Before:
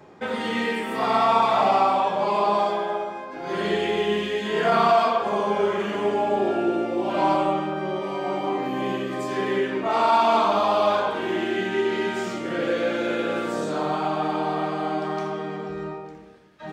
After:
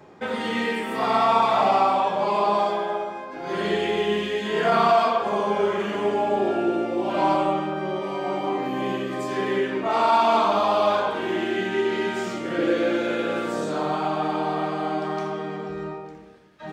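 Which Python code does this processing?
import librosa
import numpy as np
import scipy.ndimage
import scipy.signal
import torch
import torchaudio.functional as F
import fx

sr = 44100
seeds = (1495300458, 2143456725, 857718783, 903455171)

y = fx.peak_eq(x, sr, hz=330.0, db=8.0, octaves=0.32, at=(12.58, 12.99))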